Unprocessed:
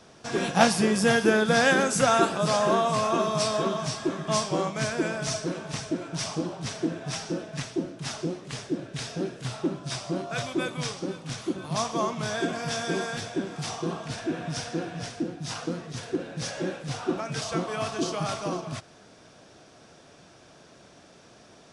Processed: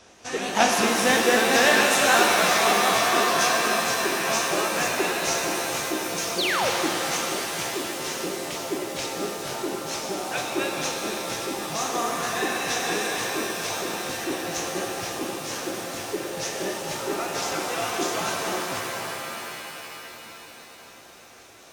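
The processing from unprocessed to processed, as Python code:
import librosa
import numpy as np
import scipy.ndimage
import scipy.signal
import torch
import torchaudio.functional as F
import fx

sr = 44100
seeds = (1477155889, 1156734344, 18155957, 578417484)

y = fx.pitch_ramps(x, sr, semitones=2.5, every_ms=195)
y = fx.graphic_eq_15(y, sr, hz=(160, 2500, 6300), db=(-11, 5, 4))
y = fx.spec_paint(y, sr, seeds[0], shape='fall', start_s=6.38, length_s=0.32, low_hz=430.0, high_hz=4900.0, level_db=-26.0)
y = fx.rev_shimmer(y, sr, seeds[1], rt60_s=3.8, semitones=7, shimmer_db=-2, drr_db=1.0)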